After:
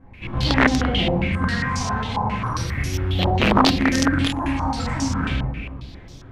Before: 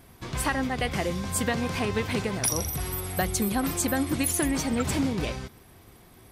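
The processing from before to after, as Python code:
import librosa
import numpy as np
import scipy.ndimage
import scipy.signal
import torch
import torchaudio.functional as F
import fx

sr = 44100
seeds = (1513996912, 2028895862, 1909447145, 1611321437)

y = fx.echo_feedback(x, sr, ms=352, feedback_pct=27, wet_db=-18)
y = fx.phaser_stages(y, sr, stages=4, low_hz=370.0, high_hz=1700.0, hz=0.37, feedback_pct=50)
y = fx.quant_companded(y, sr, bits=4)
y = fx.room_shoebox(y, sr, seeds[0], volume_m3=220.0, walls='mixed', distance_m=2.1)
y = (np.mod(10.0 ** (9.0 / 20.0) * y + 1.0, 2.0) - 1.0) / 10.0 ** (9.0 / 20.0)
y = fx.filter_held_lowpass(y, sr, hz=7.4, low_hz=870.0, high_hz=5800.0)
y = y * librosa.db_to_amplitude(-1.5)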